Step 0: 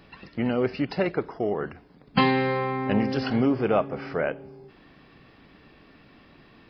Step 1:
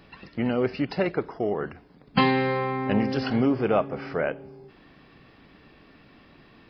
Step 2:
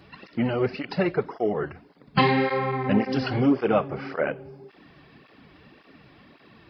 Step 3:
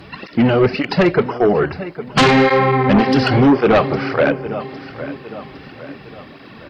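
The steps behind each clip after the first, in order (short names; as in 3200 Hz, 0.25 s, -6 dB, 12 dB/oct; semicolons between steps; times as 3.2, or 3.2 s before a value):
nothing audible
tape flanging out of phase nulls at 1.8 Hz, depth 4.8 ms; gain +4 dB
feedback echo 0.808 s, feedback 45%, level -16.5 dB; sine folder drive 9 dB, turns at -7 dBFS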